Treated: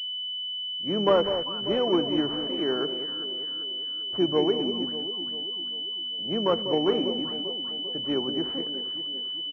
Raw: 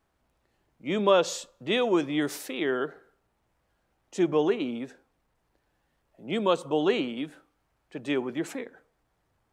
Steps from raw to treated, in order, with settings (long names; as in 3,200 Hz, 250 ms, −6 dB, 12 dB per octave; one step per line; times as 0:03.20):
delay that swaps between a low-pass and a high-pass 197 ms, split 880 Hz, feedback 71%, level −8 dB
pitch-shifted copies added −4 semitones −15 dB
switching amplifier with a slow clock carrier 3,000 Hz